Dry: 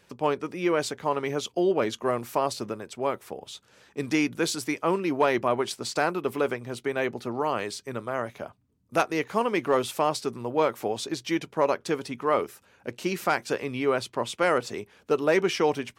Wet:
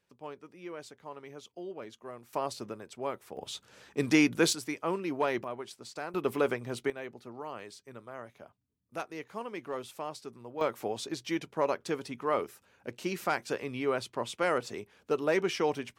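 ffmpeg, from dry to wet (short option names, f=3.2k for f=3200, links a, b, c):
-af "asetnsamples=n=441:p=0,asendcmd='2.33 volume volume -7.5dB;3.37 volume volume 1dB;4.53 volume volume -7dB;5.44 volume volume -14dB;6.14 volume volume -2dB;6.9 volume volume -14dB;10.61 volume volume -5.5dB',volume=-18dB"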